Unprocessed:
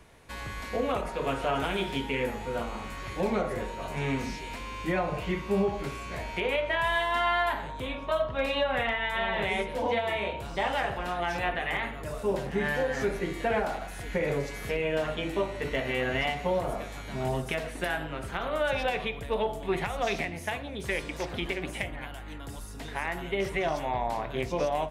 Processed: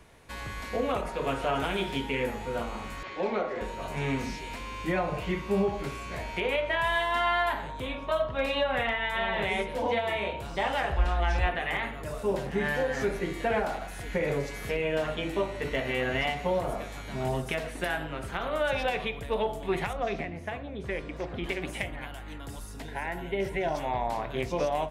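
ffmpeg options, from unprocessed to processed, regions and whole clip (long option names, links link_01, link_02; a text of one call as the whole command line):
ffmpeg -i in.wav -filter_complex "[0:a]asettb=1/sr,asplit=3[link_01][link_02][link_03];[link_01]atrim=end=3.034[link_04];[link_02]atrim=start=3.03:end=3.61,asetpts=PTS-STARTPTS,afade=type=in:duration=0.004:curve=qsin,afade=type=out:start_time=0.576:duration=0.004:curve=qsin,lowpass=frequency=8500:width=0.5412,lowpass=frequency=8500:width=1.3066,acrossover=split=230 5300:gain=0.112 1 0.0891[link_05][link_06][link_07];[link_05][link_06][link_07]amix=inputs=3:normalize=0[link_08];[link_03]atrim=start=3.606[link_09];[link_04][link_08]acrossfade=duration=0.004:curve1=hsin:curve2=qsin[link_10];[link_10][link_09]acrossfade=duration=0.004:curve1=qsin:curve2=hsin,asettb=1/sr,asplit=3[link_11][link_12][link_13];[link_11]atrim=end=10.924[link_14];[link_12]atrim=start=10.92:end=11.47,asetpts=PTS-STARTPTS,afade=type=in:duration=0.004:curve=qsin,afade=type=out:start_time=0.546:duration=0.004:curve=qsin,lowpass=7700,lowshelf=frequency=100:width_type=q:width=1.5:gain=14[link_15];[link_13]atrim=start=11.466[link_16];[link_14][link_15]acrossfade=duration=0.004:curve1=hsin:curve2=qsin[link_17];[link_17][link_16]acrossfade=duration=0.004:curve1=qsin:curve2=hsin,asettb=1/sr,asplit=3[link_18][link_19][link_20];[link_18]atrim=end=19.934[link_21];[link_19]atrim=start=19.93:end=21.44,asetpts=PTS-STARTPTS,afade=type=in:duration=0.004:curve=qsin,afade=type=out:start_time=1.506:duration=0.004:curve=qsin,lowpass=frequency=1300:poles=1,bandreject=frequency=890:width=13[link_22];[link_20]atrim=start=21.436[link_23];[link_21][link_22]acrossfade=duration=0.004:curve1=hsin:curve2=qsin[link_24];[link_24][link_23]acrossfade=duration=0.004:curve1=qsin:curve2=hsin,asettb=1/sr,asplit=3[link_25][link_26][link_27];[link_25]atrim=end=22.824[link_28];[link_26]atrim=start=22.82:end=23.75,asetpts=PTS-STARTPTS,afade=type=in:duration=0.004:curve=qsin,afade=type=out:start_time=0.926:duration=0.004:curve=qsin,asuperstop=centerf=1200:order=20:qfactor=5.8,equalizer=frequency=5400:width_type=o:width=2.5:gain=-6[link_29];[link_27]atrim=start=23.746[link_30];[link_28][link_29]acrossfade=duration=0.004:curve1=hsin:curve2=qsin[link_31];[link_31][link_30]acrossfade=duration=0.004:curve1=qsin:curve2=hsin" out.wav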